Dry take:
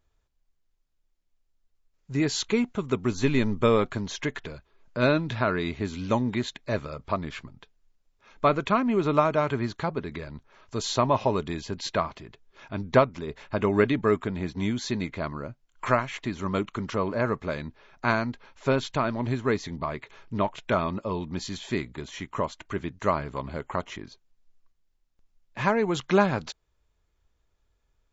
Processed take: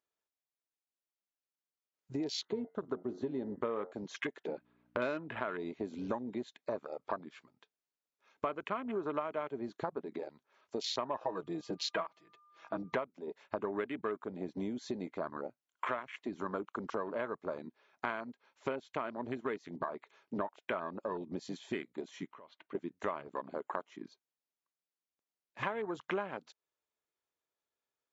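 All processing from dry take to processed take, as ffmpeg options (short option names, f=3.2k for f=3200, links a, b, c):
-filter_complex "[0:a]asettb=1/sr,asplit=3[a][b][c];[a]atrim=end=2.404[d];[b]atrim=start=2.4:end=3.92,asetpts=PTS-STARTPTS,afade=t=in:d=0.004:c=qsin,afade=t=out:st=1.516:d=0.004:c=qsin,lowpass=3.7k,equalizer=f=2.4k:w=4.7:g=-12.5,bandreject=f=90.05:t=h:w=4,bandreject=f=180.1:t=h:w=4,bandreject=f=270.15:t=h:w=4,bandreject=f=360.2:t=h:w=4,bandreject=f=450.25:t=h:w=4,bandreject=f=540.3:t=h:w=4,bandreject=f=630.35:t=h:w=4,bandreject=f=720.4:t=h:w=4,bandreject=f=810.45:t=h:w=4,bandreject=f=900.5:t=h:w=4,bandreject=f=990.55:t=h:w=4,bandreject=f=1.0806k:t=h:w=4,bandreject=f=1.17065k:t=h:w=4,bandreject=f=1.2607k:t=h:w=4,bandreject=f=1.35075k:t=h:w=4,bandreject=f=1.4408k:t=h:w=4,bandreject=f=1.53085k:t=h:w=4,bandreject=f=1.6209k:t=h:w=4,bandreject=f=1.71095k:t=h:w=4,bandreject=f=1.801k:t=h:w=4,bandreject=f=1.89105k:t=h:w=4,bandreject=f=1.9811k:t=h:w=4,bandreject=f=2.07115k:t=h:w=4[e];[c]atrim=start=3.916[f];[d][e]acrossfade=d=0.004:c1=hsin:c2=qsin[g];[g][f]acrossfade=d=0.004:c1=qsin:c2=hsin,asettb=1/sr,asplit=3[h][i][j];[h]atrim=end=4.484[k];[i]atrim=start=4.48:end=5.4,asetpts=PTS-STARTPTS,afade=t=in:d=0.004:c=qsin,afade=t=out:st=0.916:d=0.004:c=qsin,lowpass=2.8k,acontrast=70,aeval=exprs='val(0)+0.00631*(sin(2*PI*60*n/s)+sin(2*PI*2*60*n/s)/2+sin(2*PI*3*60*n/s)/3+sin(2*PI*4*60*n/s)/4+sin(2*PI*5*60*n/s)/5)':c=same[l];[j]atrim=start=5.396[m];[k][l]acrossfade=d=0.004:c1=hsin:c2=qsin[n];[n][m]acrossfade=d=0.004:c1=qsin:c2=hsin,asettb=1/sr,asplit=3[o][p][q];[o]atrim=end=11.204[r];[p]atrim=start=11.2:end=12.95,asetpts=PTS-STARTPTS,afade=t=in:d=0.004:c=qsin,afade=t=out:st=1.746:d=0.004:c=qsin,aecho=1:1:6.2:0.98,atrim=end_sample=77175,aeval=exprs='val(0)+0.00316*sin(2*PI*1200*n/s)':c=same[s];[q]atrim=start=12.946[t];[r][s]acrossfade=d=0.004:c1=hsin:c2=qsin[u];[u][t]acrossfade=d=0.004:c1=qsin:c2=hsin,asettb=1/sr,asplit=3[v][w][x];[v]atrim=end=22.274[y];[w]atrim=start=22.27:end=22.75,asetpts=PTS-STARTPTS,afade=t=in:d=0.004:c=qsin,afade=t=out:st=0.476:d=0.004:c=qsin,lowpass=f=3.9k:w=0.5412,lowpass=f=3.9k:w=1.3066,acompressor=threshold=-36dB:ratio=12:attack=3.2:release=140:knee=1:detection=peak[z];[x]atrim=start=22.746[aa];[y][z]acrossfade=d=0.004:c1=hsin:c2=qsin[ab];[ab][aa]acrossfade=d=0.004:c1=qsin:c2=hsin,highpass=320,afwtdn=0.0224,acompressor=threshold=-39dB:ratio=5,volume=4dB"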